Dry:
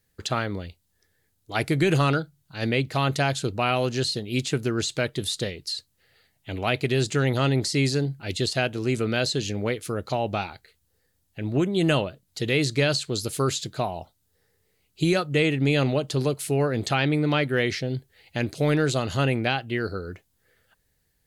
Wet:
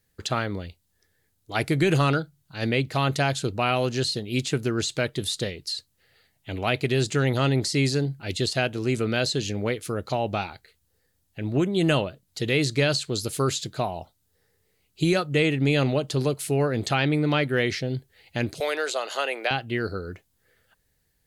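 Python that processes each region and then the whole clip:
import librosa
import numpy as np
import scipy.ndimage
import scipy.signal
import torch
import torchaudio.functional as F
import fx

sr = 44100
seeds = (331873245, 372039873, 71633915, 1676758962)

y = fx.chain(x, sr, fx.highpass(hz=480.0, slope=24),
    fx.band_squash(depth_pct=70), at=(18.6, 19.51))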